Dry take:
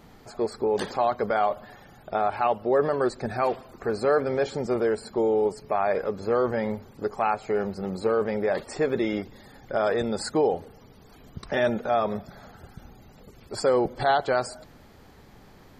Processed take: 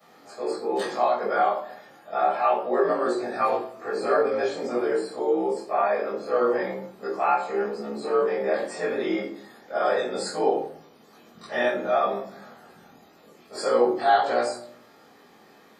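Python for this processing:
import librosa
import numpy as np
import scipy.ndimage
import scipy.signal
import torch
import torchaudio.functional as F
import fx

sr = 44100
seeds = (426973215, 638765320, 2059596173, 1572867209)

y = fx.frame_reverse(x, sr, frame_ms=49.0)
y = scipy.signal.sosfilt(scipy.signal.butter(2, 360.0, 'highpass', fs=sr, output='sos'), y)
y = fx.room_shoebox(y, sr, seeds[0], volume_m3=510.0, walls='furnished', distance_m=6.3)
y = F.gain(torch.from_numpy(y), -4.0).numpy()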